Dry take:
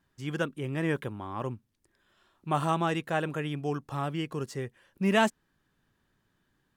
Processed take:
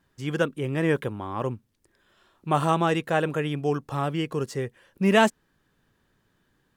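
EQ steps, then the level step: bell 480 Hz +4 dB 0.47 oct; +4.5 dB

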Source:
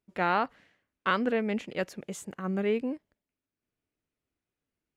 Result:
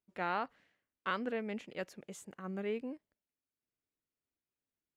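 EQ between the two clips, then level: low shelf 200 Hz -3.5 dB; -8.5 dB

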